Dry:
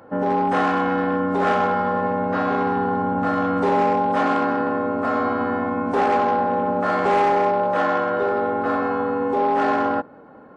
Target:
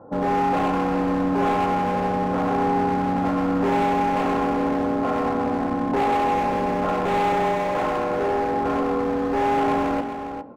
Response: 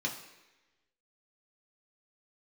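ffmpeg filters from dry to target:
-filter_complex "[0:a]lowpass=frequency=1100:width=0.5412,lowpass=frequency=1100:width=1.3066,bandreject=frequency=116.2:width_type=h:width=4,bandreject=frequency=232.4:width_type=h:width=4,asoftclip=type=hard:threshold=-21dB,aecho=1:1:406:0.335,asplit=2[link_01][link_02];[1:a]atrim=start_sample=2205,highshelf=frequency=4500:gain=-11.5[link_03];[link_02][link_03]afir=irnorm=-1:irlink=0,volume=-15dB[link_04];[link_01][link_04]amix=inputs=2:normalize=0,volume=2dB"

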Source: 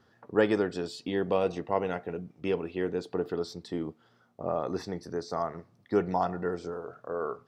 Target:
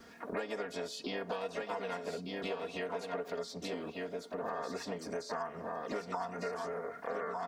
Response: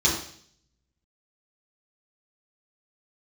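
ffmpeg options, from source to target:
-filter_complex "[0:a]highshelf=frequency=5000:gain=7.5,aecho=1:1:1197:0.355,acrossover=split=530|1100|3500[link_01][link_02][link_03][link_04];[link_01]acompressor=threshold=-43dB:ratio=4[link_05];[link_02]acompressor=threshold=-36dB:ratio=4[link_06];[link_03]acompressor=threshold=-41dB:ratio=4[link_07];[link_04]acompressor=threshold=-53dB:ratio=4[link_08];[link_05][link_06][link_07][link_08]amix=inputs=4:normalize=0,aecho=1:1:4.3:0.98,asplit=3[link_09][link_10][link_11];[link_10]asetrate=58866,aresample=44100,atempo=0.749154,volume=-9dB[link_12];[link_11]asetrate=66075,aresample=44100,atempo=0.66742,volume=-10dB[link_13];[link_09][link_12][link_13]amix=inputs=3:normalize=0,acompressor=threshold=-44dB:ratio=3,volume=5dB"

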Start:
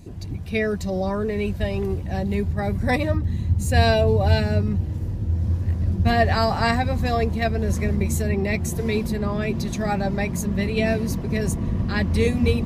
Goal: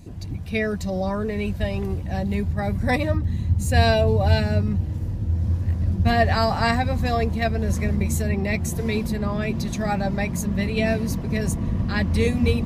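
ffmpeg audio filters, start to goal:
ffmpeg -i in.wav -af "equalizer=frequency=390:width_type=o:width=0.29:gain=-5" out.wav

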